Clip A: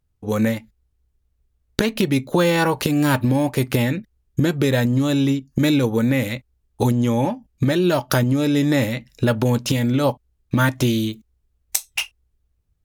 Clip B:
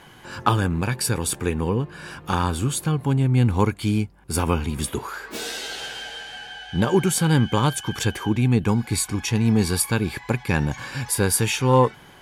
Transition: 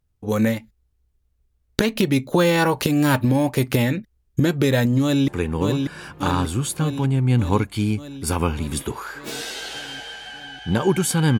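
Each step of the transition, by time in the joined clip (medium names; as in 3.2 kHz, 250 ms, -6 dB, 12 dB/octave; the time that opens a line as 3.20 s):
clip A
5.02–5.28 s: echo throw 590 ms, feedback 70%, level -4.5 dB
5.28 s: go over to clip B from 1.35 s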